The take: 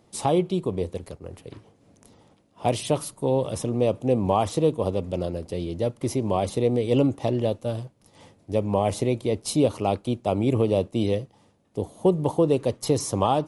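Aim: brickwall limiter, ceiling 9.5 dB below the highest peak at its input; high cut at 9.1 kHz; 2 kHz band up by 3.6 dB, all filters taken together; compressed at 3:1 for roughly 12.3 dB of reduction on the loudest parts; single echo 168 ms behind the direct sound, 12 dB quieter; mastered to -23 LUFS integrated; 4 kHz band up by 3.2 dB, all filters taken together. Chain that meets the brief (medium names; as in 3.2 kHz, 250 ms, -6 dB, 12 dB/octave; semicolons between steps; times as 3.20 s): low-pass 9.1 kHz; peaking EQ 2 kHz +3.5 dB; peaking EQ 4 kHz +3 dB; compression 3:1, threshold -33 dBFS; peak limiter -25.5 dBFS; delay 168 ms -12 dB; trim +14.5 dB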